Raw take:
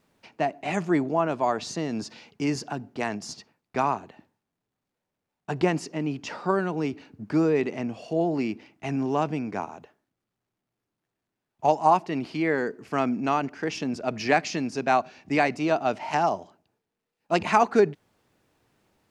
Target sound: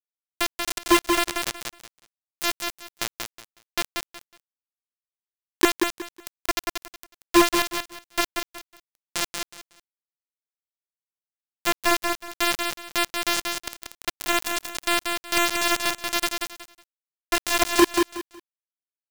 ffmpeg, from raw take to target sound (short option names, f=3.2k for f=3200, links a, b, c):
-af "equalizer=f=125:t=o:w=1:g=-8,equalizer=f=500:t=o:w=1:g=-4,equalizer=f=1k:t=o:w=1:g=-10,equalizer=f=4k:t=o:w=1:g=5,equalizer=f=8k:t=o:w=1:g=-8,afftfilt=real='hypot(re,im)*cos(PI*b)':imag='0':win_size=512:overlap=0.75,acrusher=bits=3:mix=0:aa=0.000001,aecho=1:1:184|368|552:0.335|0.077|0.0177,alimiter=level_in=20.5dB:limit=-1dB:release=50:level=0:latency=1,volume=-7.5dB"